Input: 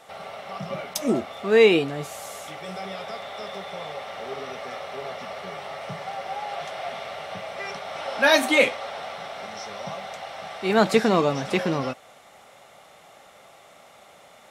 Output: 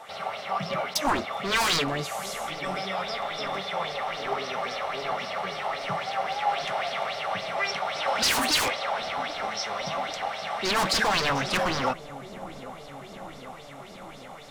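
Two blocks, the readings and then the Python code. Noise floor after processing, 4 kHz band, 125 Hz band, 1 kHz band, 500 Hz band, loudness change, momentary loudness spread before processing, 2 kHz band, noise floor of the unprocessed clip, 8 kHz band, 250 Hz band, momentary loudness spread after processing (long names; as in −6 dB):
−44 dBFS, +3.5 dB, −3.0 dB, +3.0 dB, −7.5 dB, −2.0 dB, 17 LU, −1.5 dB, −51 dBFS, +5.0 dB, −7.5 dB, 18 LU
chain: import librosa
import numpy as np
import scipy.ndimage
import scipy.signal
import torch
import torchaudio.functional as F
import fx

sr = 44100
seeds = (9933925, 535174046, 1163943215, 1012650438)

p1 = 10.0 ** (-23.0 / 20.0) * (np.abs((x / 10.0 ** (-23.0 / 20.0) + 3.0) % 4.0 - 2.0) - 1.0)
p2 = p1 + fx.echo_wet_lowpass(p1, sr, ms=793, feedback_pct=76, hz=620.0, wet_db=-12.5, dry=0)
y = fx.bell_lfo(p2, sr, hz=3.7, low_hz=840.0, high_hz=5200.0, db=13)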